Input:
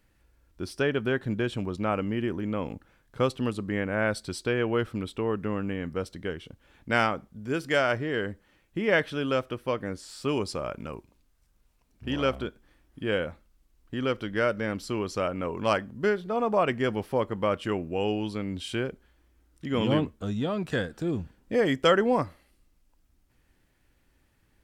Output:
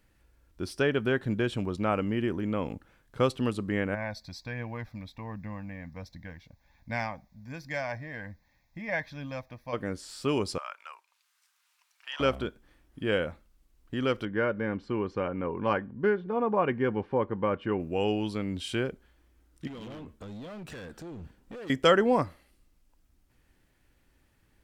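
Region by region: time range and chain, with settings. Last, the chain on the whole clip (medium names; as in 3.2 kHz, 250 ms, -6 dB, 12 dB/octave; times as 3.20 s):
3.94–9.72 s: flange 1.3 Hz, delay 0.2 ms, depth 1.6 ms, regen +72% + added noise pink -73 dBFS + static phaser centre 2 kHz, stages 8
10.58–12.20 s: inverse Chebyshev high-pass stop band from 160 Hz, stop band 80 dB + treble shelf 8.7 kHz -8 dB + tape noise reduction on one side only encoder only
14.25–17.80 s: low-pass 2 kHz + comb of notches 650 Hz
19.67–21.70 s: compression 8:1, threshold -34 dBFS + hard clipper -39 dBFS
whole clip: none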